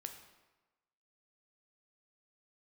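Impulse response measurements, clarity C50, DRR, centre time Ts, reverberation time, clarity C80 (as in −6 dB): 8.0 dB, 5.0 dB, 21 ms, 1.2 s, 10.0 dB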